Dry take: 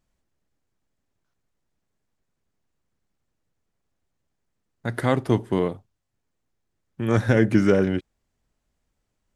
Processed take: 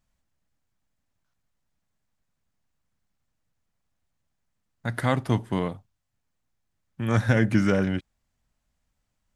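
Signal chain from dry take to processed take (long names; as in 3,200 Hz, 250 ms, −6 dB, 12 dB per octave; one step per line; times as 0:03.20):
parametric band 390 Hz −9 dB 0.85 octaves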